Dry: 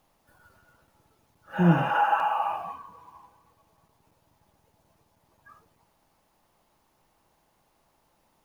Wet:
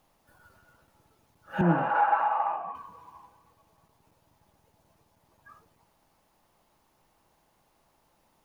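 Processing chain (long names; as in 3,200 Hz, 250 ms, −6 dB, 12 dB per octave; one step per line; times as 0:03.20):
phase distortion by the signal itself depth 0.095 ms
0:01.61–0:02.75: three-way crossover with the lows and the highs turned down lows −23 dB, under 170 Hz, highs −19 dB, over 2,000 Hz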